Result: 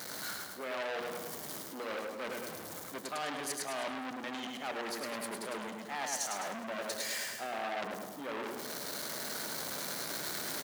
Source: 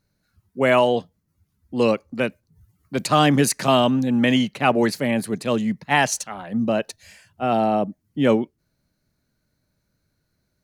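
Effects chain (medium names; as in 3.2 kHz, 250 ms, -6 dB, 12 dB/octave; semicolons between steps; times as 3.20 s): jump at every zero crossing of -33 dBFS; recorder AGC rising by 7.4 dB/s; high-pass 370 Hz 12 dB/octave; peaking EQ 2.6 kHz -9.5 dB 0.24 oct; hum notches 60/120/180/240/300/360/420/480/540 Hz; reverse; compression 5:1, threshold -35 dBFS, peak gain reduction 19 dB; reverse; feedback delay 104 ms, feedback 48%, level -3.5 dB; on a send at -21 dB: reverberation RT60 3.2 s, pre-delay 145 ms; on the sum: transformer saturation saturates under 3.5 kHz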